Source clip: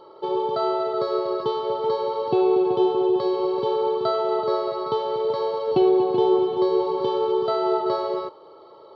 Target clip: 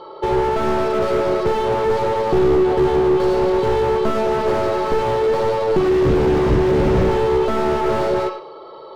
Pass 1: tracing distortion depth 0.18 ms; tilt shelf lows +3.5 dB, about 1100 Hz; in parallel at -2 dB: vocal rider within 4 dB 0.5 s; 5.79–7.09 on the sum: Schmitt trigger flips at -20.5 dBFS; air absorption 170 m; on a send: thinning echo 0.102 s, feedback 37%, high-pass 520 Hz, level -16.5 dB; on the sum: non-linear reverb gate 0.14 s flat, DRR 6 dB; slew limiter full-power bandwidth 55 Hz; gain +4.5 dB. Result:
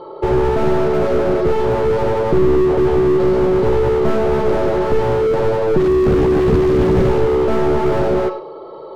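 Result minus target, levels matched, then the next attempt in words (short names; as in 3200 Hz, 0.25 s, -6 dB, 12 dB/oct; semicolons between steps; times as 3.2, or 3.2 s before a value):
1000 Hz band -4.0 dB
tracing distortion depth 0.18 ms; tilt shelf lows -3.5 dB, about 1100 Hz; in parallel at -2 dB: vocal rider within 4 dB 0.5 s; 5.79–7.09 on the sum: Schmitt trigger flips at -20.5 dBFS; air absorption 170 m; on a send: thinning echo 0.102 s, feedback 37%, high-pass 520 Hz, level -16.5 dB; on the sum: non-linear reverb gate 0.14 s flat, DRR 6 dB; slew limiter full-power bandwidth 55 Hz; gain +4.5 dB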